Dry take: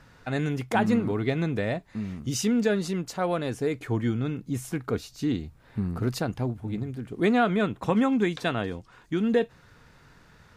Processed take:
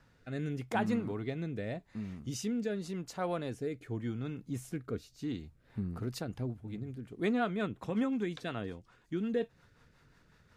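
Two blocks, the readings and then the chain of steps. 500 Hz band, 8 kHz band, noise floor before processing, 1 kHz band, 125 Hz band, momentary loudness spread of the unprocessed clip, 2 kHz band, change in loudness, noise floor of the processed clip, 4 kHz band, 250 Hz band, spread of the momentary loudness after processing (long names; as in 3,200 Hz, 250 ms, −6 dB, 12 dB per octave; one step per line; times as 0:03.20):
−9.5 dB, −10.5 dB, −56 dBFS, −10.0 dB, −9.0 dB, 9 LU, −10.0 dB, −9.5 dB, −66 dBFS, −10.0 dB, −9.0 dB, 10 LU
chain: rotating-speaker cabinet horn 0.85 Hz, later 5.5 Hz, at 0:05.14
level −7.5 dB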